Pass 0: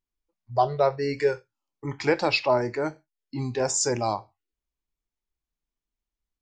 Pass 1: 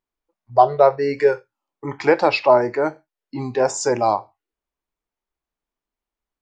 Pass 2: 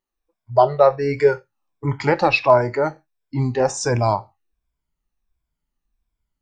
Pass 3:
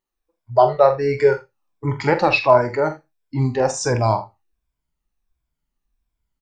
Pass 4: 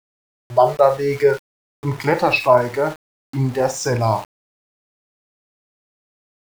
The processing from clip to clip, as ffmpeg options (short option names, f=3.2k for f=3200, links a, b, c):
-af "equalizer=f=760:w=0.3:g=13,volume=-4dB"
-af "afftfilt=real='re*pow(10,9/40*sin(2*PI*(1.7*log(max(b,1)*sr/1024/100)/log(2)-(-1.4)*(pts-256)/sr)))':imag='im*pow(10,9/40*sin(2*PI*(1.7*log(max(b,1)*sr/1024/100)/log(2)-(-1.4)*(pts-256)/sr)))':win_size=1024:overlap=0.75,asubboost=boost=7.5:cutoff=170"
-af "aecho=1:1:45|80:0.316|0.126"
-af "aeval=exprs='val(0)*gte(abs(val(0)),0.0251)':c=same"